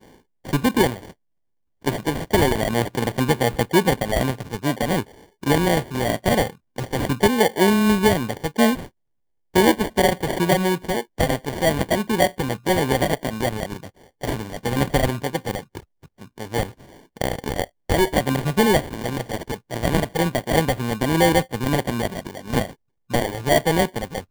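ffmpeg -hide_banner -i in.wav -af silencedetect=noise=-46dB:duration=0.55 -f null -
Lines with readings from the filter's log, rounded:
silence_start: 1.12
silence_end: 1.82 | silence_duration: 0.70
silence_start: 8.89
silence_end: 9.54 | silence_duration: 0.65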